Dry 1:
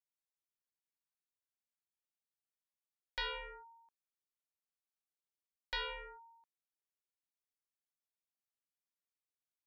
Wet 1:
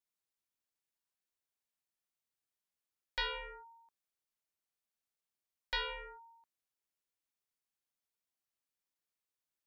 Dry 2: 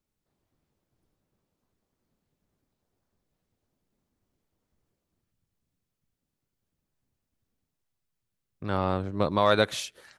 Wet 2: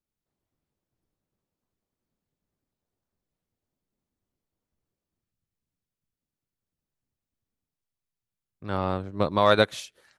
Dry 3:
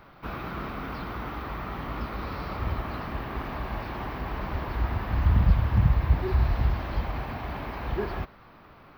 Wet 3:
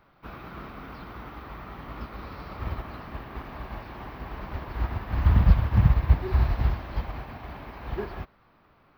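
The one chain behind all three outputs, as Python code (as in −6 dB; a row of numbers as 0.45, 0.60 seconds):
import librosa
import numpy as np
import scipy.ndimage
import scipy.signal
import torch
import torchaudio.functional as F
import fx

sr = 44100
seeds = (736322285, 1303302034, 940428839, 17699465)

y = fx.upward_expand(x, sr, threshold_db=-40.0, expansion=1.5)
y = F.gain(torch.from_numpy(y), 3.5).numpy()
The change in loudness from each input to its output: +2.5, +2.0, +2.5 LU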